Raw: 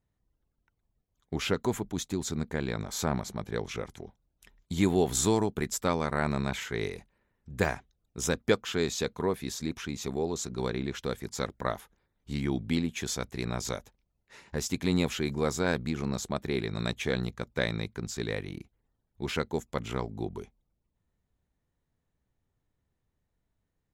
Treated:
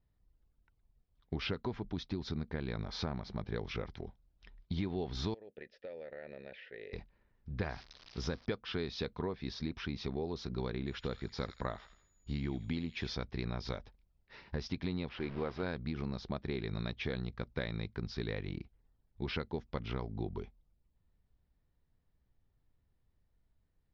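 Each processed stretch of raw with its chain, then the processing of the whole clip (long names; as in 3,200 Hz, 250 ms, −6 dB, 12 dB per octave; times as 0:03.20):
0:05.34–0:06.93: formant filter e + notch filter 1,600 Hz, Q 23 + downward compressor 5 to 1, threshold −40 dBFS
0:07.69–0:08.46: spike at every zero crossing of −27.5 dBFS + dynamic equaliser 2,800 Hz, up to −5 dB, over −53 dBFS, Q 1.8
0:10.86–0:13.11: steady tone 6,900 Hz −39 dBFS + delay with a high-pass on its return 83 ms, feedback 36%, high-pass 1,900 Hz, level −11 dB
0:15.09–0:15.63: hold until the input has moved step −37 dBFS + bass and treble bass −6 dB, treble −14 dB
whole clip: Butterworth low-pass 5,300 Hz 72 dB per octave; low-shelf EQ 72 Hz +11.5 dB; downward compressor 6 to 1, threshold −31 dBFS; level −2 dB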